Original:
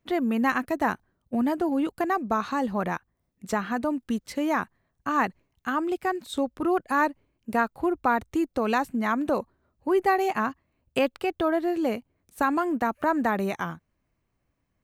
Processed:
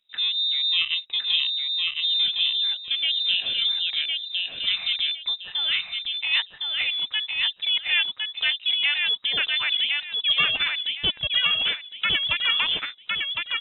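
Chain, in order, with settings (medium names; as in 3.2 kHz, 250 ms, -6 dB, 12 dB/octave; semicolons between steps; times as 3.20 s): gliding tape speed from 58% -> 160%; frequency inversion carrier 3.8 kHz; feedback delay 1059 ms, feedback 25%, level -3 dB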